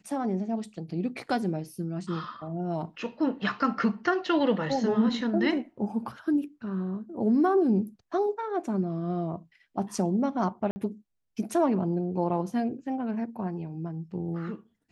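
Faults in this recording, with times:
10.71–10.76 gap 50 ms

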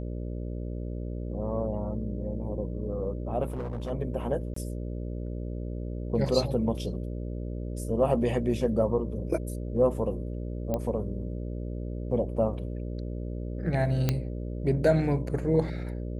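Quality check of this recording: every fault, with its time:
buzz 60 Hz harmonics 10 -34 dBFS
3.46–3.91 clipped -29.5 dBFS
4.54–4.56 gap 24 ms
10.74 pop -17 dBFS
14.09 pop -11 dBFS

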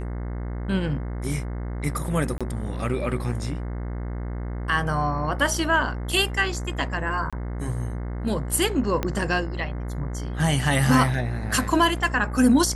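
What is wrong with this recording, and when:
buzz 60 Hz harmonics 36 -30 dBFS
2.38–2.41 gap 26 ms
7.3–7.33 gap 26 ms
9.03 pop -11 dBFS

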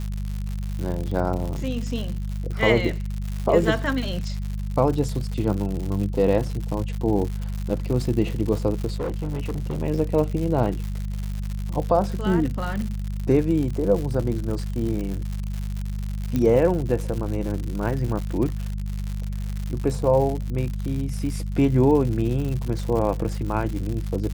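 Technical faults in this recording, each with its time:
crackle 140/s -28 dBFS
hum 50 Hz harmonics 4 -28 dBFS
8.87–9.82 clipped -23 dBFS
16.36 pop -12 dBFS
18.08 gap 2.5 ms

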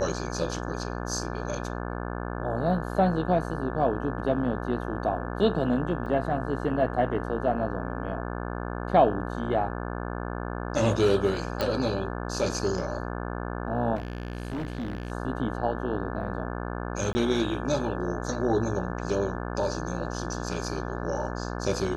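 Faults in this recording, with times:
buzz 60 Hz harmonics 29 -33 dBFS
6.06 gap 3 ms
11.61 pop
13.95–15.12 clipped -28.5 dBFS
17.13–17.15 gap 20 ms

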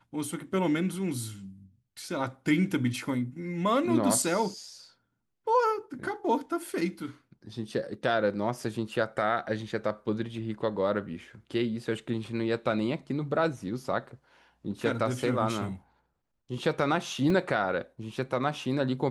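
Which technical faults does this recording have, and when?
17.3 gap 2.3 ms

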